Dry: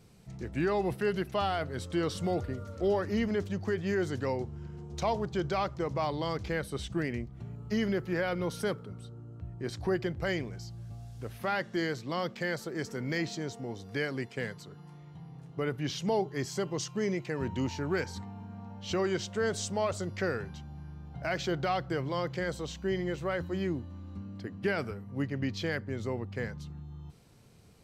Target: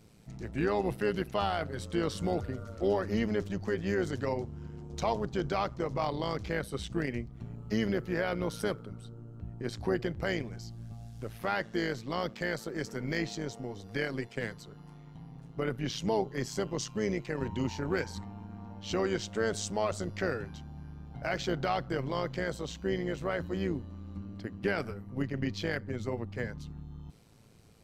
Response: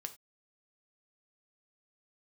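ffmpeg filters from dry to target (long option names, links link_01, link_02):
-af "tremolo=f=110:d=0.667,volume=2.5dB"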